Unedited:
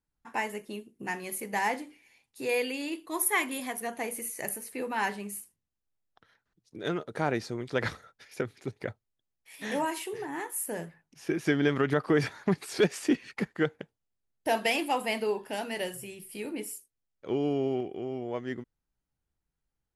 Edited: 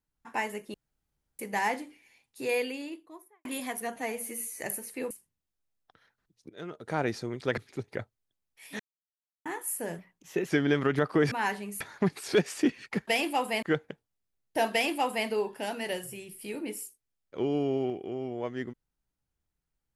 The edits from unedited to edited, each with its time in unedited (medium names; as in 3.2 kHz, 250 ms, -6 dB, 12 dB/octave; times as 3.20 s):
0.74–1.39 s: room tone
2.46–3.45 s: studio fade out
3.96–4.39 s: stretch 1.5×
4.89–5.38 s: move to 12.26 s
6.77–7.32 s: fade in, from -20.5 dB
7.85–8.46 s: delete
9.68–10.34 s: mute
10.87–11.43 s: speed 112%
14.63–15.18 s: copy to 13.53 s